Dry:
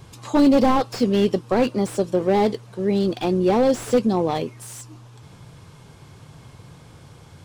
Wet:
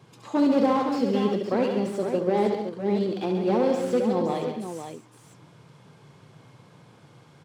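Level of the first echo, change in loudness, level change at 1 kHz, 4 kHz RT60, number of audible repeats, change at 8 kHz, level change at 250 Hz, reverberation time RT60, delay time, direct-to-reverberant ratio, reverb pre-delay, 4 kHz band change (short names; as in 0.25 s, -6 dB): -6.5 dB, -4.5 dB, -4.5 dB, none, 5, -10.0 dB, -4.5 dB, none, 69 ms, none, none, -7.0 dB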